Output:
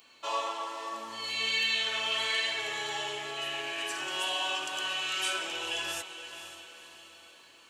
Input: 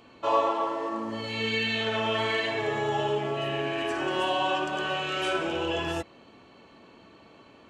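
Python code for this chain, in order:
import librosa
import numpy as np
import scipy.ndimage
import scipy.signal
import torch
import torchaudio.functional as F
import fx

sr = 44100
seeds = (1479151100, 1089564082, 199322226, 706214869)

y = F.preemphasis(torch.from_numpy(x), 0.97).numpy()
y = fx.echo_diffused(y, sr, ms=501, feedback_pct=49, wet_db=-10.5)
y = y * librosa.db_to_amplitude(9.0)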